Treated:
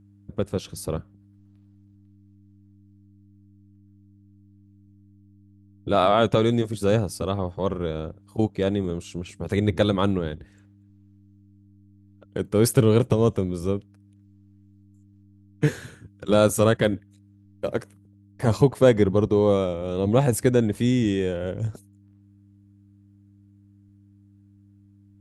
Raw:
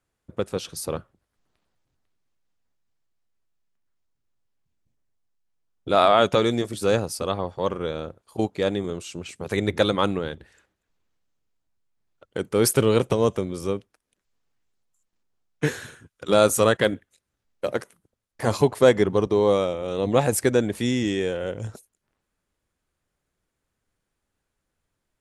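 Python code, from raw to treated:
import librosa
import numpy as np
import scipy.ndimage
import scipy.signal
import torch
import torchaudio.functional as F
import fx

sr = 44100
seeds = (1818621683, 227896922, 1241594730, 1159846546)

y = fx.low_shelf(x, sr, hz=310.0, db=11.0)
y = fx.dmg_buzz(y, sr, base_hz=100.0, harmonics=3, level_db=-50.0, tilt_db=-4, odd_only=False)
y = y * librosa.db_to_amplitude(-4.0)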